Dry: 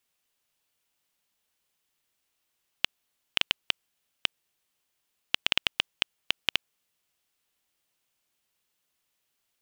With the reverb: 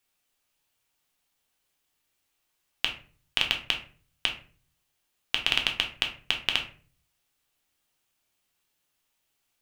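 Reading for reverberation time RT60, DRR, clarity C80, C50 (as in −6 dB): 0.40 s, 2.0 dB, 15.0 dB, 10.0 dB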